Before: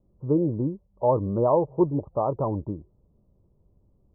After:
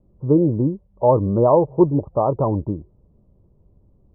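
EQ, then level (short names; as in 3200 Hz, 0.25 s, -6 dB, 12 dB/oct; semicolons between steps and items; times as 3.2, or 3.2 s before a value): air absorption 420 m; +7.5 dB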